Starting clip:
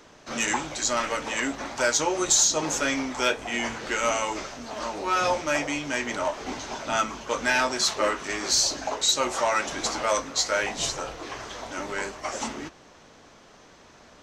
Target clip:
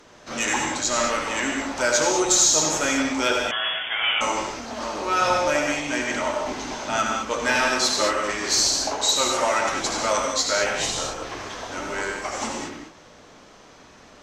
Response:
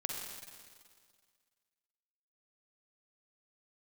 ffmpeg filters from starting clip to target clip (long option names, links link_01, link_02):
-filter_complex "[1:a]atrim=start_sample=2205,atrim=end_sample=6615,asetrate=29106,aresample=44100[link_01];[0:a][link_01]afir=irnorm=-1:irlink=0,asettb=1/sr,asplit=3[link_02][link_03][link_04];[link_02]atrim=end=3.514[link_05];[link_03]atrim=start=3.51:end=4.21,asetpts=PTS-STARTPTS,afade=type=in:duration=0.004:curve=qsin,afade=type=out:start_time=0.696:duration=0.004:curve=qsin,lowpass=frequency=3100:width_type=q:width=0.5098,lowpass=frequency=3100:width_type=q:width=0.6013,lowpass=frequency=3100:width_type=q:width=0.9,lowpass=frequency=3100:width_type=q:width=2.563,afreqshift=-3600[link_06];[link_04]atrim=start=4.206[link_07];[link_05][link_06]acrossfade=duration=0.004:curve1=hsin:curve2=qsin[link_08];[link_08][link_07]acrossfade=duration=0.004:curve1=qsin:curve2=hsin"